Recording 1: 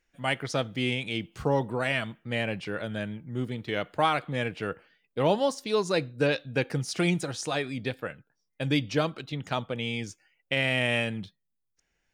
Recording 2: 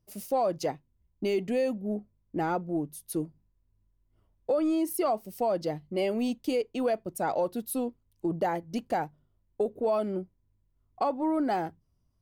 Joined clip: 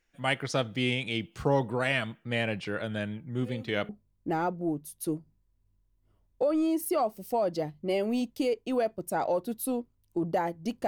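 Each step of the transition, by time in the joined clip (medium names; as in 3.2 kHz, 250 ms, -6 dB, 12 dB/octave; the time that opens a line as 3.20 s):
recording 1
3.42 s: add recording 2 from 1.50 s 0.47 s -17 dB
3.89 s: go over to recording 2 from 1.97 s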